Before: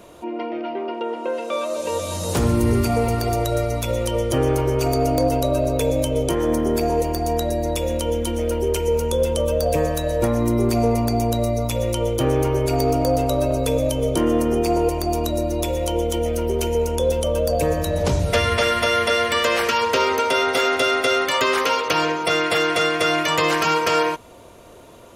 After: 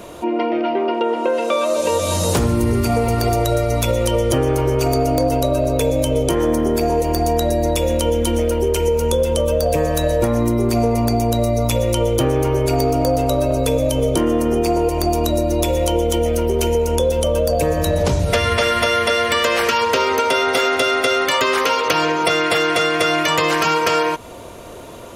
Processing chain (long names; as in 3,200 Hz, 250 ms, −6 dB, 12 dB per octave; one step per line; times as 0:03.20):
downward compressor, threshold −23 dBFS, peak gain reduction 9 dB
level +9 dB